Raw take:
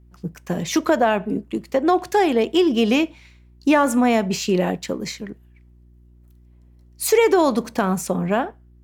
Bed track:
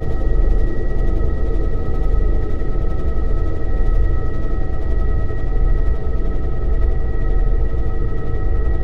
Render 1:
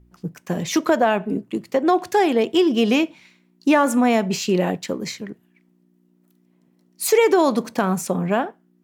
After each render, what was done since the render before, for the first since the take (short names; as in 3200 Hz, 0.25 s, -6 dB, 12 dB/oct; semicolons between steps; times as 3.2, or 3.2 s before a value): de-hum 60 Hz, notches 2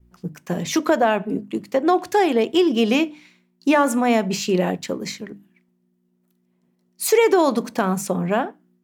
notches 50/100/150/200/250/300 Hz; expander -56 dBFS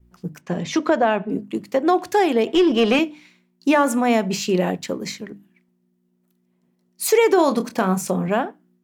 0.41–1.32 air absorption 83 m; 2.47–2.99 overdrive pedal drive 16 dB, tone 1900 Hz, clips at -7 dBFS; 7.35–8.28 doubler 27 ms -10 dB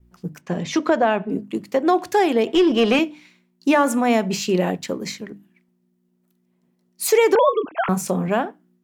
7.35–7.89 sine-wave speech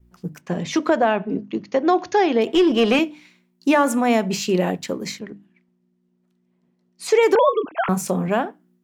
1.09–2.42 brick-wall FIR low-pass 6800 Hz; 5.19–7.23 air absorption 79 m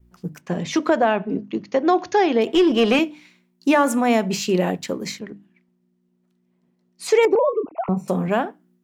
7.25–8.08 running mean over 27 samples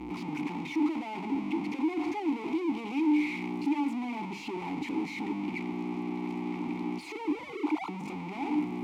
infinite clipping; vowel filter u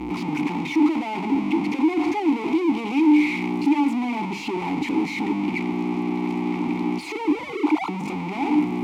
gain +9.5 dB